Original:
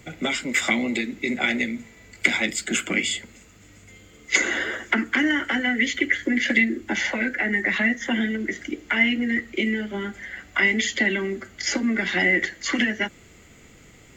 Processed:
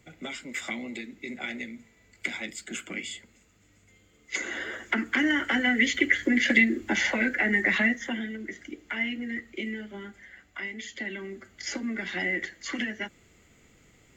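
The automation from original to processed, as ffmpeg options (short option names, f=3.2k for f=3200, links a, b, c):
-af "volume=7dB,afade=t=in:st=4.34:d=1.33:silence=0.281838,afade=t=out:st=7.75:d=0.45:silence=0.354813,afade=t=out:st=9.78:d=0.95:silence=0.446684,afade=t=in:st=10.73:d=0.91:silence=0.398107"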